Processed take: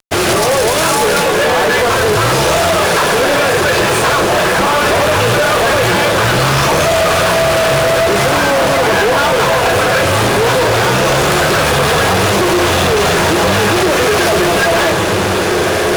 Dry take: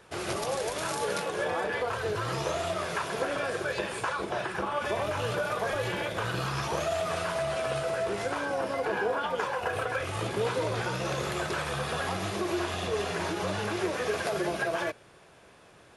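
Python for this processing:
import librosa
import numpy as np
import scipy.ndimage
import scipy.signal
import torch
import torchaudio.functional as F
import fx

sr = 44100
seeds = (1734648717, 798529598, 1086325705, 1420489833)

y = fx.echo_diffused(x, sr, ms=1671, feedback_pct=58, wet_db=-6.5)
y = fx.fuzz(y, sr, gain_db=37.0, gate_db=-46.0)
y = y * 10.0 ** (3.5 / 20.0)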